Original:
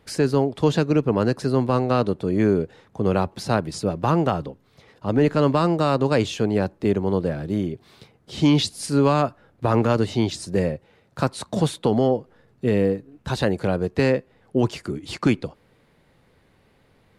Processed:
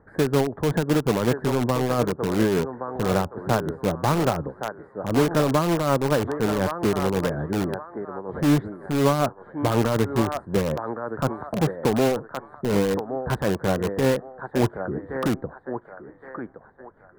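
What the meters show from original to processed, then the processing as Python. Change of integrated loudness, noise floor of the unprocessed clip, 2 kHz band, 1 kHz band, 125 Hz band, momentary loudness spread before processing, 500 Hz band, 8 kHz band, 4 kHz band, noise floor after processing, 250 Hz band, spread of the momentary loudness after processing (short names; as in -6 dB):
-2.0 dB, -60 dBFS, +1.0 dB, -0.5 dB, -2.0 dB, 8 LU, -1.0 dB, +0.5 dB, -3.0 dB, -51 dBFS, -2.0 dB, 12 LU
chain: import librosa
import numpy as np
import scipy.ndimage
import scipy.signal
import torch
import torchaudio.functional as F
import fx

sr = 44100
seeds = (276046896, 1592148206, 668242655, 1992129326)

p1 = scipy.signal.sosfilt(scipy.signal.ellip(4, 1.0, 40, 1700.0, 'lowpass', fs=sr, output='sos'), x)
p2 = fx.echo_thinned(p1, sr, ms=1119, feedback_pct=42, hz=770.0, wet_db=-5)
p3 = p2 * (1.0 - 0.46 / 2.0 + 0.46 / 2.0 * np.cos(2.0 * np.pi * 5.4 * (np.arange(len(p2)) / sr)))
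p4 = (np.mod(10.0 ** (20.0 / 20.0) * p3 + 1.0, 2.0) - 1.0) / 10.0 ** (20.0 / 20.0)
y = p3 + (p4 * librosa.db_to_amplitude(-6.0))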